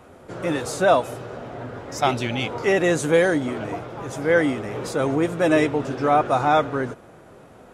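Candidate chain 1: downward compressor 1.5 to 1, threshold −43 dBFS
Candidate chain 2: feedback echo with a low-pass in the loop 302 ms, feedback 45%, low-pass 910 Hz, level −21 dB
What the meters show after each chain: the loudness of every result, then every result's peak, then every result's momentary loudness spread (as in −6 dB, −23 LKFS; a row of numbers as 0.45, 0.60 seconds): −31.5, −21.5 LKFS; −15.0, −5.0 dBFS; 11, 15 LU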